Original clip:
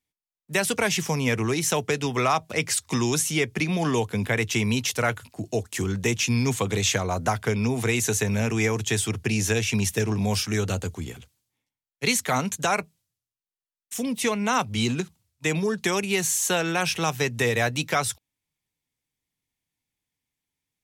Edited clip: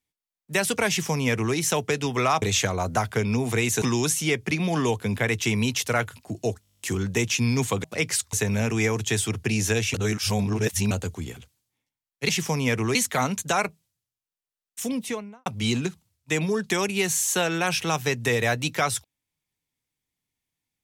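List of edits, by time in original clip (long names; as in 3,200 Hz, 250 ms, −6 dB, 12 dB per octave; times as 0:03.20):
0:00.89–0:01.55: duplicate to 0:12.09
0:02.42–0:02.91: swap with 0:06.73–0:08.13
0:05.70: stutter 0.02 s, 11 plays
0:09.74–0:10.71: reverse
0:14.00–0:14.60: fade out and dull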